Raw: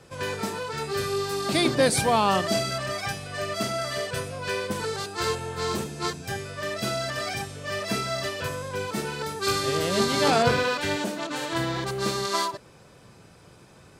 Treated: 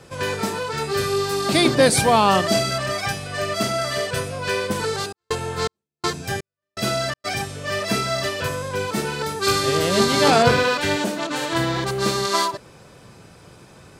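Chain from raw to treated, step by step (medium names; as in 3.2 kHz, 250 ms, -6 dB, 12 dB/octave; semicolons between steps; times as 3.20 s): 4.94–7.24 s: trance gate "xx..xx.xx.." 82 bpm -60 dB; trim +5.5 dB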